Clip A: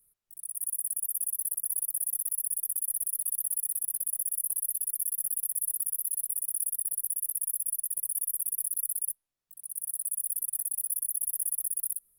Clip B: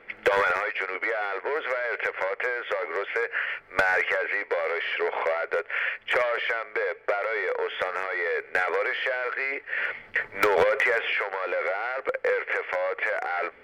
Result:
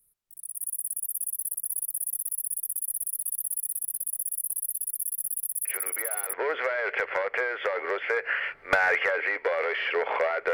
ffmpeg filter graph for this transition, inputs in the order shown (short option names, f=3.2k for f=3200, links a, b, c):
-filter_complex "[1:a]asplit=2[a][b];[0:a]apad=whole_dur=10.53,atrim=end=10.53,atrim=end=6.332[c];[b]atrim=start=1.388:end=5.59[d];[a]atrim=start=0.71:end=1.39,asetpts=PTS-STARTPTS,volume=-9dB,afade=t=in:d=0.004:c=hsin,afade=t=out:st=0.676:d=0.004:c=hsin,adelay=249165S[e];[c][d]acrossfade=d=0.004:c1=hsin:c2=hsin[f];[f][e]amix=inputs=2:normalize=0"